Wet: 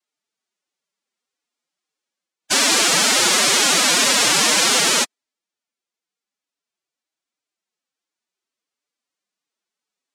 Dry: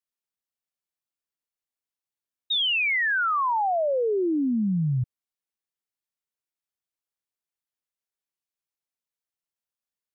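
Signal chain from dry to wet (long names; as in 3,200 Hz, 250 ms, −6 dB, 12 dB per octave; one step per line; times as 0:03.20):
tape wow and flutter 30 cents
cochlear-implant simulation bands 1
phase-vocoder pitch shift with formants kept +10.5 semitones
level +8.5 dB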